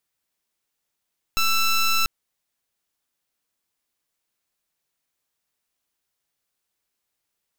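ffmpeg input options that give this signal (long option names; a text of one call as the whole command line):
ffmpeg -f lavfi -i "aevalsrc='0.106*(2*lt(mod(1330*t,1),0.14)-1)':duration=0.69:sample_rate=44100" out.wav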